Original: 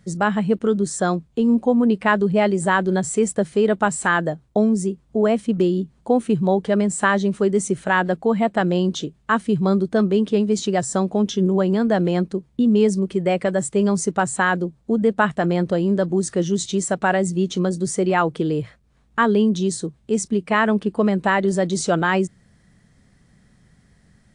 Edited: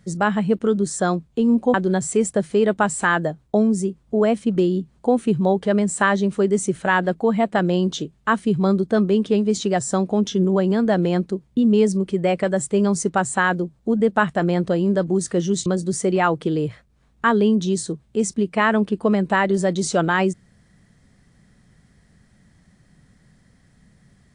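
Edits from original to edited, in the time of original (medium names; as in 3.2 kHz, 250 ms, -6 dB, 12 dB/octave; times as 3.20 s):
1.74–2.76 s: delete
16.68–17.60 s: delete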